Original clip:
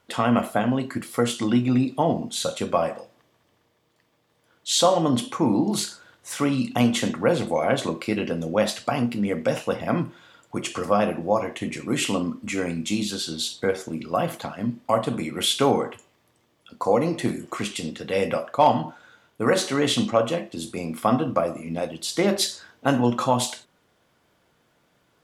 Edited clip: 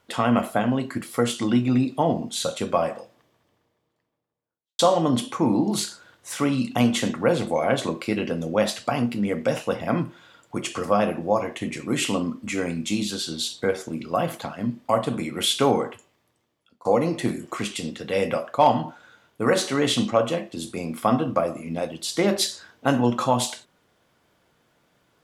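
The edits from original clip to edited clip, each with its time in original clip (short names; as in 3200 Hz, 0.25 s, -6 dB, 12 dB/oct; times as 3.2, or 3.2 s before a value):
2.99–4.79 studio fade out
15.82–16.85 fade out, to -24 dB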